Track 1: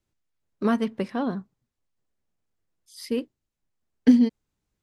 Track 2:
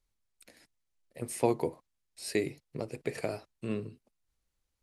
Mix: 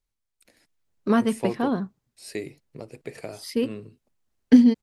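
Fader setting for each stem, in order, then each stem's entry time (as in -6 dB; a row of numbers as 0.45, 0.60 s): +2.5, -2.5 dB; 0.45, 0.00 s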